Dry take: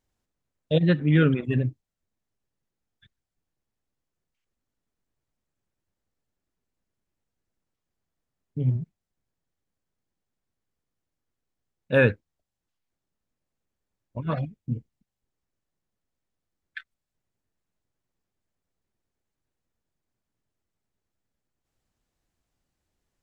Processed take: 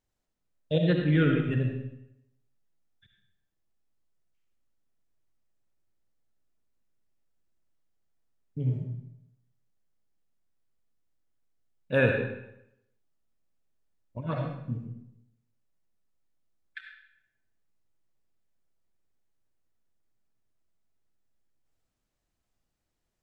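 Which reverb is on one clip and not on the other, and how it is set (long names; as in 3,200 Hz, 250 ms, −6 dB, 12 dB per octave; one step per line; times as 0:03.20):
comb and all-pass reverb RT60 0.81 s, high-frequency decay 0.85×, pre-delay 25 ms, DRR 2 dB
level −4.5 dB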